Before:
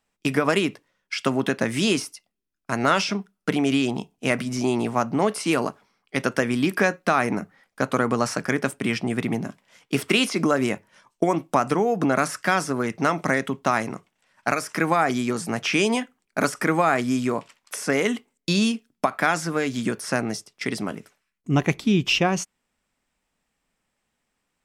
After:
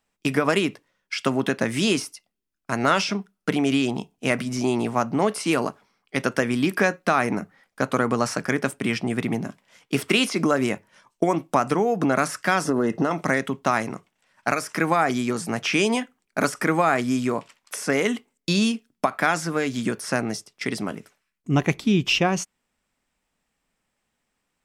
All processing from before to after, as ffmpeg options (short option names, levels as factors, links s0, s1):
-filter_complex "[0:a]asettb=1/sr,asplit=3[s0][s1][s2];[s0]atrim=end=12.654[s3];[s1]atrim=start=12.65:end=13.11,asetpts=PTS-STARTPTS,afade=t=in:d=0.004:c=qsin,afade=t=out:st=0.456:d=0.004:c=qsin,equalizer=f=360:w=0.41:g=11,acompressor=threshold=0.141:ratio=6:attack=3.2:release=140:knee=1:detection=peak,asuperstop=centerf=2300:order=20:qfactor=6.7[s4];[s2]atrim=start=13.106[s5];[s3][s4]acrossfade=d=0.004:c1=hsin:c2=qsin[s6];[s6][s5]acrossfade=d=0.004:c1=qsin:c2=hsin"